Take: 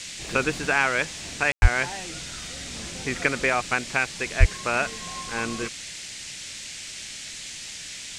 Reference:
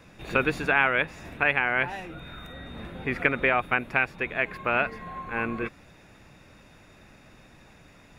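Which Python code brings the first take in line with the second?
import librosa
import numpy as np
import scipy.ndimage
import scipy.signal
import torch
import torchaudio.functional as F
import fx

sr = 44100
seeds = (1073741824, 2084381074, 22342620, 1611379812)

y = fx.highpass(x, sr, hz=140.0, slope=24, at=(1.61, 1.73), fade=0.02)
y = fx.highpass(y, sr, hz=140.0, slope=24, at=(4.39, 4.51), fade=0.02)
y = fx.fix_ambience(y, sr, seeds[0], print_start_s=5.91, print_end_s=6.41, start_s=1.52, end_s=1.62)
y = fx.noise_reduce(y, sr, print_start_s=5.91, print_end_s=6.41, reduce_db=15.0)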